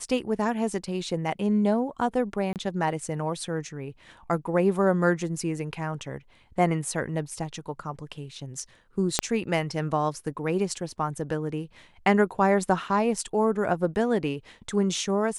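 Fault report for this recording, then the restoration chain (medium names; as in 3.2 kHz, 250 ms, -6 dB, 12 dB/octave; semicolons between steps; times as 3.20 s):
2.53–2.56 s: dropout 28 ms
9.19 s: pop -5 dBFS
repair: de-click; interpolate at 2.53 s, 28 ms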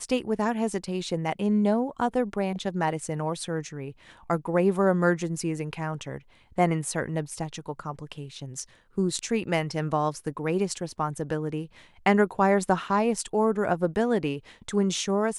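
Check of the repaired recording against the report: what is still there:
9.19 s: pop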